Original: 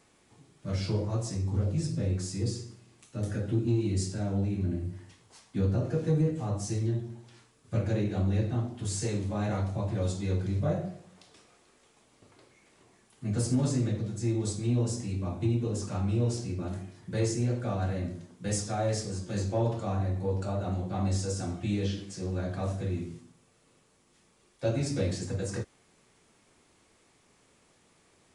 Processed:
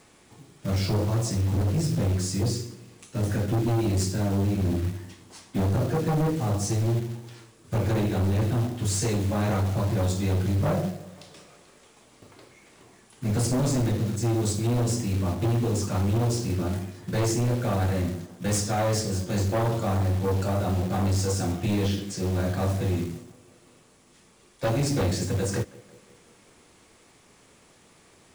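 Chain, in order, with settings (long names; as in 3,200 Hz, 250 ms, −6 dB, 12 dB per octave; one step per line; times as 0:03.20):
tape delay 178 ms, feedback 66%, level −22 dB
sine wavefolder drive 7 dB, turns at −16.5 dBFS
floating-point word with a short mantissa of 2 bits
level −3 dB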